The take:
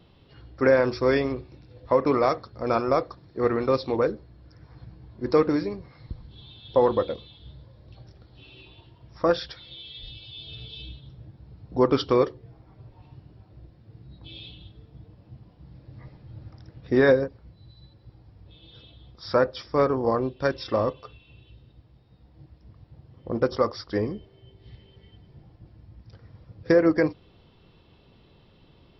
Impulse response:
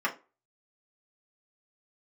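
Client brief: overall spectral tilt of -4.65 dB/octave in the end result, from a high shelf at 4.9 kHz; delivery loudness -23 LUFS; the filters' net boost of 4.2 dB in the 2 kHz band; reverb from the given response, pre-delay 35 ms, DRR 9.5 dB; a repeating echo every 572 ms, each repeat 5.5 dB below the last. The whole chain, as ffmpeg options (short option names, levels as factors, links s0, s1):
-filter_complex "[0:a]equalizer=f=2000:t=o:g=6,highshelf=f=4900:g=-4,aecho=1:1:572|1144|1716|2288|2860|3432|4004:0.531|0.281|0.149|0.079|0.0419|0.0222|0.0118,asplit=2[s0][s1];[1:a]atrim=start_sample=2205,adelay=35[s2];[s1][s2]afir=irnorm=-1:irlink=0,volume=0.1[s3];[s0][s3]amix=inputs=2:normalize=0,volume=1.26"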